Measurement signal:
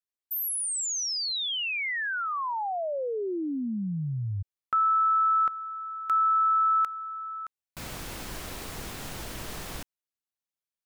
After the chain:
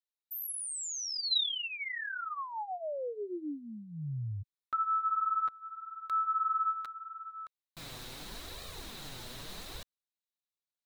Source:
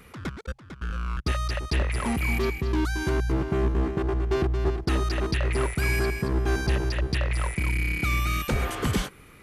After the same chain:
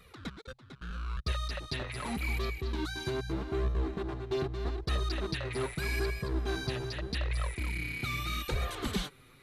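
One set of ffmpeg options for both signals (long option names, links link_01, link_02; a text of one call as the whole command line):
ffmpeg -i in.wav -af "equalizer=frequency=3900:width_type=o:width=0.31:gain=11.5,flanger=delay=1.6:depth=6.5:regen=4:speed=0.81:shape=sinusoidal,volume=-5dB" out.wav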